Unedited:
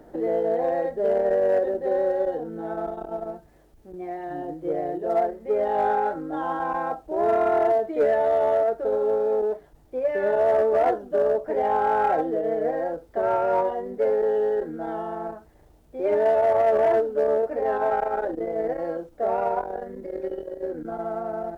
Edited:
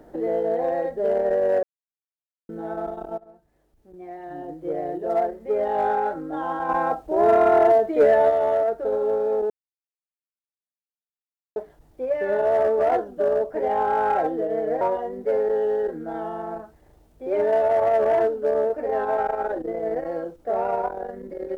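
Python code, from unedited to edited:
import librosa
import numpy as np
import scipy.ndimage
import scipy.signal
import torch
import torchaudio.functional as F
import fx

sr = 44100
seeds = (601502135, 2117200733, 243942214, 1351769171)

y = fx.edit(x, sr, fx.silence(start_s=1.63, length_s=0.86),
    fx.fade_in_from(start_s=3.18, length_s=1.78, floor_db=-19.0),
    fx.clip_gain(start_s=6.69, length_s=1.61, db=4.5),
    fx.insert_silence(at_s=9.5, length_s=2.06),
    fx.cut(start_s=12.75, length_s=0.79), tone=tone)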